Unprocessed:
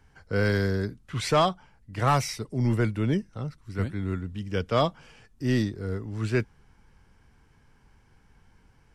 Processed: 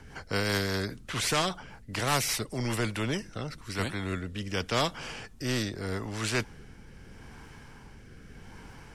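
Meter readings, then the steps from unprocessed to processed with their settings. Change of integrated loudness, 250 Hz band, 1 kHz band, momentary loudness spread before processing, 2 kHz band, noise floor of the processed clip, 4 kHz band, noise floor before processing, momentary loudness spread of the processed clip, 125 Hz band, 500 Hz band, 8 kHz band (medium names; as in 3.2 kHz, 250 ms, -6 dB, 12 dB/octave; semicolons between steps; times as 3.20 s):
-3.5 dB, -5.0 dB, -4.5 dB, 9 LU, +1.5 dB, -51 dBFS, +4.0 dB, -61 dBFS, 22 LU, -6.5 dB, -5.0 dB, +7.0 dB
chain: rotary cabinet horn 5 Hz, later 0.8 Hz, at 2.78 s; spectrum-flattening compressor 2:1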